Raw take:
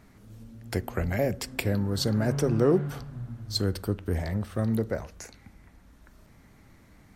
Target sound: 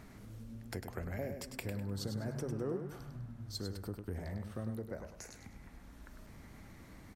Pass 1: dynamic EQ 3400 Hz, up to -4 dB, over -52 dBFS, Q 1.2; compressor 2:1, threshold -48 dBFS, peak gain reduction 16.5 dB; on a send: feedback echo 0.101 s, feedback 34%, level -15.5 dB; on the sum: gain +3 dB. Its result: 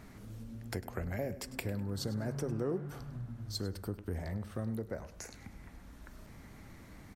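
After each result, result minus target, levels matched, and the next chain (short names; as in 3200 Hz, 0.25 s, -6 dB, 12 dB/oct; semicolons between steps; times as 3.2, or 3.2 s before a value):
echo-to-direct -8.5 dB; compressor: peak gain reduction -3.5 dB
dynamic EQ 3400 Hz, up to -4 dB, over -52 dBFS, Q 1.2; compressor 2:1, threshold -48 dBFS, peak gain reduction 16.5 dB; on a send: feedback echo 0.101 s, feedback 34%, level -7 dB; on the sum: gain +3 dB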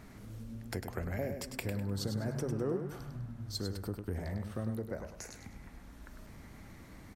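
compressor: peak gain reduction -3.5 dB
dynamic EQ 3400 Hz, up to -4 dB, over -52 dBFS, Q 1.2; compressor 2:1, threshold -55 dBFS, peak gain reduction 20 dB; on a send: feedback echo 0.101 s, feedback 34%, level -7 dB; on the sum: gain +3 dB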